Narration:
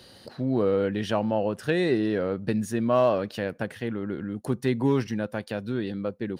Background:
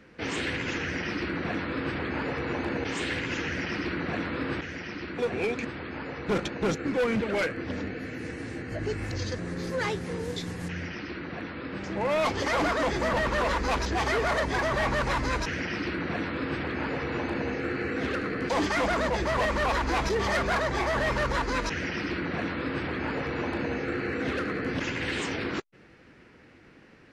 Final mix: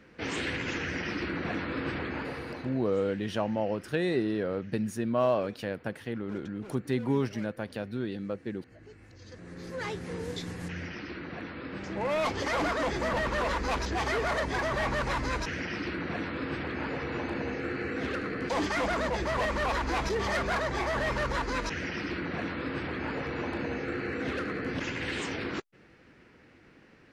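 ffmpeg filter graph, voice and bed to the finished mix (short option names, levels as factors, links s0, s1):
-filter_complex "[0:a]adelay=2250,volume=0.596[s0];[1:a]volume=5.96,afade=t=out:st=1.95:d=0.91:silence=0.11885,afade=t=in:st=9.19:d=1.02:silence=0.133352[s1];[s0][s1]amix=inputs=2:normalize=0"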